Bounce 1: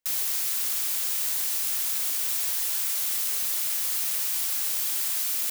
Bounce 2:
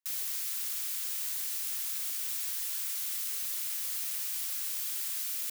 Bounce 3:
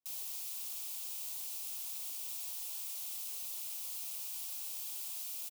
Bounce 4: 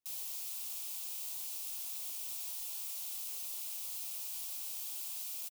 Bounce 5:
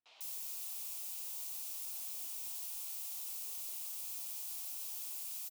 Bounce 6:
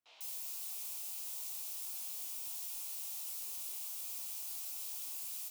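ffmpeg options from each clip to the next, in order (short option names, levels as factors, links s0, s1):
-af "highpass=1100,volume=0.422"
-af "firequalizer=gain_entry='entry(710,0);entry(1700,-24);entry(2500,-10)':delay=0.05:min_phase=1,volume=1.41"
-filter_complex "[0:a]asplit=2[s0][s1];[s1]adelay=17,volume=0.282[s2];[s0][s2]amix=inputs=2:normalize=0"
-filter_complex "[0:a]acrossover=split=3500[s0][s1];[s1]adelay=150[s2];[s0][s2]amix=inputs=2:normalize=0,volume=0.841"
-af "flanger=delay=17.5:depth=5.9:speed=1.5,volume=1.58"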